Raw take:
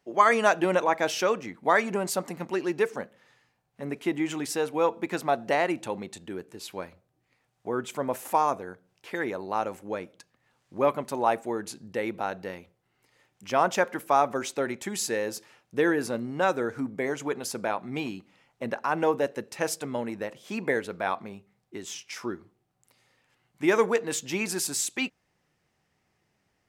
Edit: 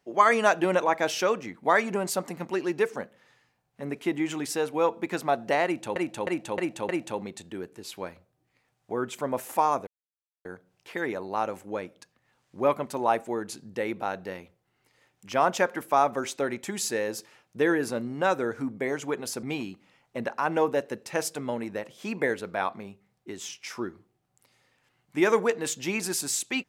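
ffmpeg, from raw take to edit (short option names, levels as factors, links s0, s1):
-filter_complex "[0:a]asplit=7[s0][s1][s2][s3][s4][s5][s6];[s0]atrim=end=5.962[s7];[s1]atrim=start=5.648:end=5.962[s8];[s2]atrim=start=5.648:end=5.962[s9];[s3]atrim=start=5.648:end=5.962[s10];[s4]atrim=start=5.648:end=8.63,asetpts=PTS-STARTPTS,afade=t=out:st=2.978:d=0.004:c=hsin,apad=pad_dur=0.58[s11];[s5]atrim=start=8.63:end=17.612,asetpts=PTS-STARTPTS,afade=t=in:d=0.004:c=hsin[s12];[s6]atrim=start=17.888[s13];[s7][s8]acrossfade=d=0.004:c1=hsin:c2=hsin[s14];[s14][s9]acrossfade=d=0.004:c1=hsin:c2=hsin[s15];[s15][s10]acrossfade=d=0.004:c1=hsin:c2=hsin[s16];[s11][s12]concat=n=2:v=0:a=1[s17];[s16][s17]acrossfade=d=0.004:c1=hsin:c2=hsin[s18];[s18][s13]acrossfade=d=0.004:c1=hsin:c2=hsin"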